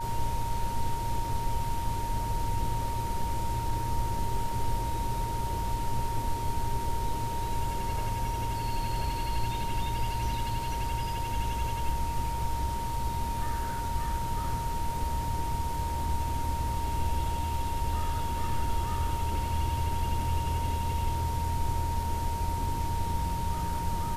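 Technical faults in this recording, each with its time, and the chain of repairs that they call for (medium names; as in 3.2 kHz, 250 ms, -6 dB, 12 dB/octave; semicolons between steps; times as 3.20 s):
whine 930 Hz -33 dBFS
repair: band-stop 930 Hz, Q 30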